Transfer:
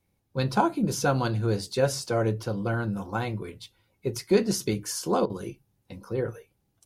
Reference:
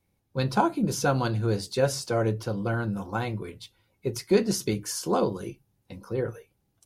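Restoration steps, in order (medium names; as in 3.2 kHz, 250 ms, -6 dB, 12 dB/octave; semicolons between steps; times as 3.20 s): interpolate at 5.26 s, 37 ms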